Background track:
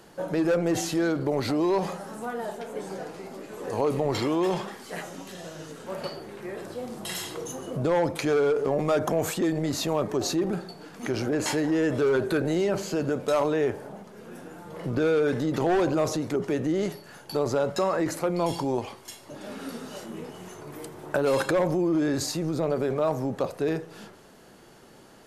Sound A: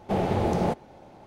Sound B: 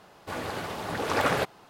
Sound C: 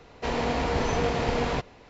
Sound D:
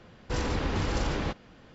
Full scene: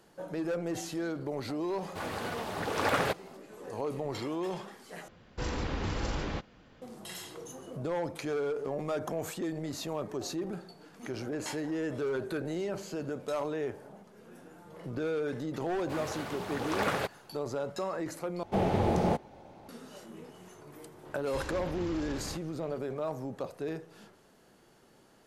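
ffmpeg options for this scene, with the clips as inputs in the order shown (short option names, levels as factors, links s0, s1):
-filter_complex "[2:a]asplit=2[s0][s1];[4:a]asplit=2[s2][s3];[0:a]volume=0.335[s4];[s3]acompressor=threshold=0.0224:ratio=6:attack=3.2:release=140:knee=1:detection=peak[s5];[s4]asplit=3[s6][s7][s8];[s6]atrim=end=5.084[s9];[s2]atrim=end=1.74,asetpts=PTS-STARTPTS,volume=0.596[s10];[s7]atrim=start=6.816:end=18.434[s11];[1:a]atrim=end=1.26,asetpts=PTS-STARTPTS,volume=0.75[s12];[s8]atrim=start=19.686[s13];[s0]atrim=end=1.69,asetpts=PTS-STARTPTS,volume=0.708,afade=t=in:d=0.004:c=hsin,afade=t=out:st=1.686:d=0.004:c=hsin,adelay=1680[s14];[s1]atrim=end=1.69,asetpts=PTS-STARTPTS,volume=0.531,afade=t=in:d=0.004:c=hsin,afade=t=out:st=1.686:d=0.004:c=hsin,adelay=15620[s15];[s5]atrim=end=1.74,asetpts=PTS-STARTPTS,volume=0.668,afade=t=in:d=0.004:c=hsin,afade=t=out:st=1.736:d=0.004:c=hsin,adelay=21050[s16];[s9][s10]acrossfade=d=0.004:c1=hsin:c2=hsin[s17];[s17][s11]acrossfade=d=0.004:c1=hsin:c2=hsin[s18];[s18][s12]acrossfade=d=0.004:c1=hsin:c2=hsin[s19];[s19][s13]acrossfade=d=0.004:c1=hsin:c2=hsin[s20];[s20][s14][s15][s16]amix=inputs=4:normalize=0"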